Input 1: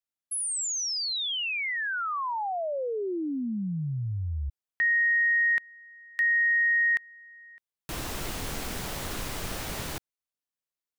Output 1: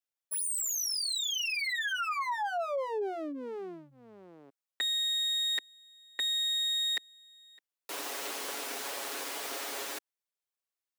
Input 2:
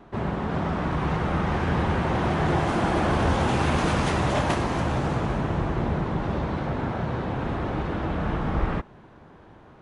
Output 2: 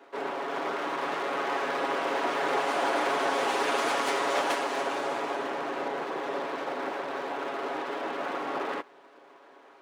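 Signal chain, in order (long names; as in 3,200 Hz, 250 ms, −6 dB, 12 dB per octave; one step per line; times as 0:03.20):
lower of the sound and its delayed copy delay 7.2 ms
high-pass filter 340 Hz 24 dB per octave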